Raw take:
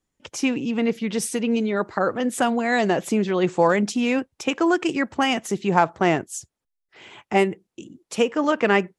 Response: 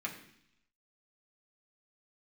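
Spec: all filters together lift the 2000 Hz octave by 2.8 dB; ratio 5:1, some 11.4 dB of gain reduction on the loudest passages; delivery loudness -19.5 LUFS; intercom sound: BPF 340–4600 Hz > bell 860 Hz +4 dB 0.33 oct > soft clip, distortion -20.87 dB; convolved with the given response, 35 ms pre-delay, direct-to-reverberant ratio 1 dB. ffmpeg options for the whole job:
-filter_complex "[0:a]equalizer=f=2k:t=o:g=3.5,acompressor=threshold=-25dB:ratio=5,asplit=2[a][b];[1:a]atrim=start_sample=2205,adelay=35[c];[b][c]afir=irnorm=-1:irlink=0,volume=-3dB[d];[a][d]amix=inputs=2:normalize=0,highpass=340,lowpass=4.6k,equalizer=f=860:t=o:w=0.33:g=4,asoftclip=threshold=-16.5dB,volume=10dB"

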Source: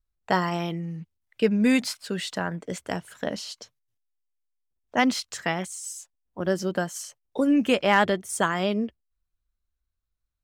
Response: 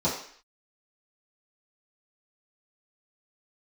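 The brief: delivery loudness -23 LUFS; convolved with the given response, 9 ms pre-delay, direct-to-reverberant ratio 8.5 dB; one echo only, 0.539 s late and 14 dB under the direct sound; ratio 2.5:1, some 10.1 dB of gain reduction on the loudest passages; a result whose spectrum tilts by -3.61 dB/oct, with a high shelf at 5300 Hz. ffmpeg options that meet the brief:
-filter_complex "[0:a]highshelf=f=5.3k:g=8.5,acompressor=threshold=-32dB:ratio=2.5,aecho=1:1:539:0.2,asplit=2[a][b];[1:a]atrim=start_sample=2205,adelay=9[c];[b][c]afir=irnorm=-1:irlink=0,volume=-20dB[d];[a][d]amix=inputs=2:normalize=0,volume=9.5dB"

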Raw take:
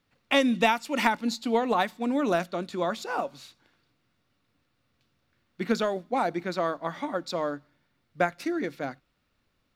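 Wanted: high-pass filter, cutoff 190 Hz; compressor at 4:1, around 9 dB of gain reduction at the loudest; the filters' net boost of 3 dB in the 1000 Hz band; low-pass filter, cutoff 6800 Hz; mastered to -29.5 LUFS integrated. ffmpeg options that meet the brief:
-af "highpass=190,lowpass=6.8k,equalizer=f=1k:t=o:g=4,acompressor=threshold=-26dB:ratio=4,volume=2.5dB"

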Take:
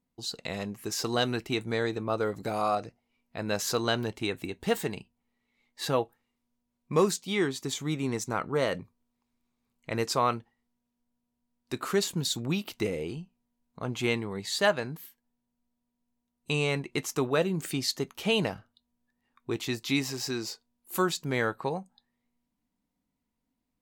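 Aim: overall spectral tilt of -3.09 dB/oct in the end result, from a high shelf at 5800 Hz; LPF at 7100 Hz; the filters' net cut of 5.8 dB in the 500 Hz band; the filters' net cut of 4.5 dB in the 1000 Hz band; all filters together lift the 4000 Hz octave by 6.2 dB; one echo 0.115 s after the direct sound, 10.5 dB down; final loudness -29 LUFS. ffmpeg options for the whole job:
-af "lowpass=7.1k,equalizer=f=500:t=o:g=-6.5,equalizer=f=1k:t=o:g=-4.5,equalizer=f=4k:t=o:g=6,highshelf=f=5.8k:g=6,aecho=1:1:115:0.299,volume=0.5dB"

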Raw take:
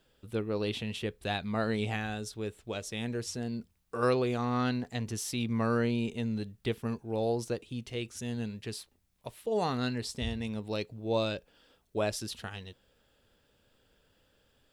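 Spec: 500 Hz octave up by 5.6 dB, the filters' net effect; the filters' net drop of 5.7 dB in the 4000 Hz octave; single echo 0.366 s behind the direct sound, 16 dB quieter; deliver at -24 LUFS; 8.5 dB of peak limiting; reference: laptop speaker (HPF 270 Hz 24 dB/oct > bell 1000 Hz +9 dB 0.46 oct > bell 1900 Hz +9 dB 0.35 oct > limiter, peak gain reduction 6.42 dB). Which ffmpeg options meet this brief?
-af "equalizer=f=500:t=o:g=6,equalizer=f=4k:t=o:g=-8,alimiter=limit=-22dB:level=0:latency=1,highpass=f=270:w=0.5412,highpass=f=270:w=1.3066,equalizer=f=1k:t=o:w=0.46:g=9,equalizer=f=1.9k:t=o:w=0.35:g=9,aecho=1:1:366:0.158,volume=11.5dB,alimiter=limit=-12dB:level=0:latency=1"

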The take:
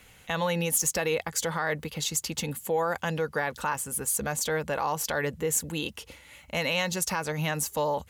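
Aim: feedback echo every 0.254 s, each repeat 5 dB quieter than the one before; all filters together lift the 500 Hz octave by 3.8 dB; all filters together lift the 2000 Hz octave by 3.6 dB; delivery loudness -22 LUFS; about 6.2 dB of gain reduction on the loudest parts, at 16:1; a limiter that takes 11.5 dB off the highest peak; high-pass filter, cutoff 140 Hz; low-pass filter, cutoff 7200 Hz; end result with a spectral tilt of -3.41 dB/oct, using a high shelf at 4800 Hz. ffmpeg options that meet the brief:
-af "highpass=140,lowpass=7.2k,equalizer=f=500:t=o:g=4,equalizer=f=2k:t=o:g=5.5,highshelf=f=4.8k:g=-6.5,acompressor=threshold=-26dB:ratio=16,alimiter=level_in=1dB:limit=-24dB:level=0:latency=1,volume=-1dB,aecho=1:1:254|508|762|1016|1270|1524|1778:0.562|0.315|0.176|0.0988|0.0553|0.031|0.0173,volume=12dB"

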